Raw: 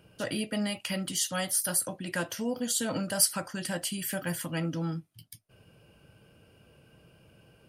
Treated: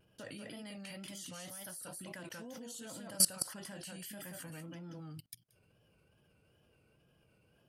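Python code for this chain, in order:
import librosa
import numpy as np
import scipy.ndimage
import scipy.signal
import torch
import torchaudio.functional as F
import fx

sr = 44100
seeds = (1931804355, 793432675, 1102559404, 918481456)

y = x + 10.0 ** (-3.5 / 20.0) * np.pad(x, (int(185 * sr / 1000.0), 0))[:len(x)]
y = fx.level_steps(y, sr, step_db=23)
y = fx.wow_flutter(y, sr, seeds[0], rate_hz=2.1, depth_cents=84.0)
y = F.gain(torch.from_numpy(y), -1.0).numpy()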